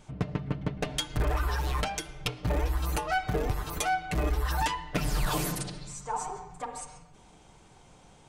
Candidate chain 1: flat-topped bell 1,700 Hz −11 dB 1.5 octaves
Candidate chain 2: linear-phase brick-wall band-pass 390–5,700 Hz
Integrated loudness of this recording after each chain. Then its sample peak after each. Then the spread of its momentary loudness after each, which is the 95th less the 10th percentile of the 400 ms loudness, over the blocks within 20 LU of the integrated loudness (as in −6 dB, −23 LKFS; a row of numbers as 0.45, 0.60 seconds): −32.5, −34.5 LKFS; −17.0, −17.5 dBFS; 10, 12 LU